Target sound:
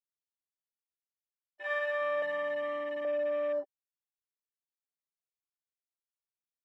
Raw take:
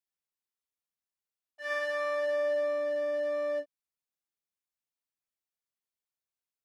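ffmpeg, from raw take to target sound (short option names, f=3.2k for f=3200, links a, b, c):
-filter_complex "[0:a]afwtdn=0.00891,asettb=1/sr,asplit=3[a][b][c];[a]atrim=end=2.224[d];[b]atrim=start=2.22:end=3.05,asetpts=PTS-STARTPTS,afade=t=in:d=0.004:c=qsin,afade=t=out:st=0.826:d=0.004:c=qsin,aecho=1:1:1:0.74,atrim=end_sample=36603[e];[c]atrim=start=3.046[f];[d][e]acrossfade=d=0.004:c1=hsin:c2=qsin[g];[g][f]acrossfade=d=0.004:c1=qsin:c2=hsin"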